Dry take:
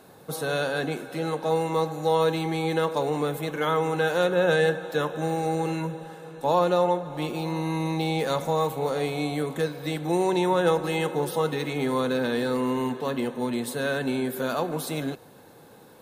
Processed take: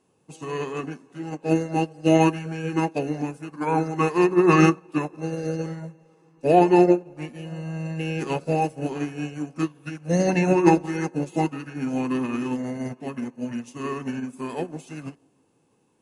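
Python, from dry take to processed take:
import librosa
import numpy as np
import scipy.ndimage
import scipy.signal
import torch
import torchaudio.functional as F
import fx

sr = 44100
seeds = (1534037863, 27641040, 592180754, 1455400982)

y = fx.formant_shift(x, sr, semitones=-6)
y = fx.echo_wet_bandpass(y, sr, ms=164, feedback_pct=51, hz=440.0, wet_db=-16.5)
y = fx.upward_expand(y, sr, threshold_db=-35.0, expansion=2.5)
y = y * 10.0 ** (8.0 / 20.0)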